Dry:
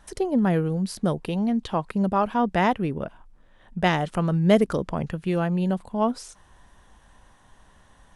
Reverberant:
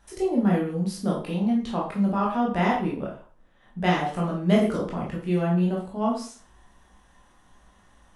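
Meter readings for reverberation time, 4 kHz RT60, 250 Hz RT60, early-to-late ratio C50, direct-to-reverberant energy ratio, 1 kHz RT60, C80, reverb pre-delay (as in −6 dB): 0.45 s, 0.40 s, 0.40 s, 5.5 dB, −4.0 dB, 0.45 s, 10.0 dB, 14 ms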